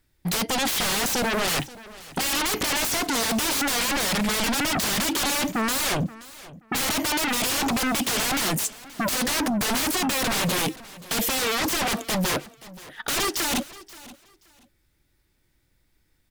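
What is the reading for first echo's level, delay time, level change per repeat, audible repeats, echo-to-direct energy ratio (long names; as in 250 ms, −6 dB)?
−19.0 dB, 528 ms, −13.5 dB, 2, −19.0 dB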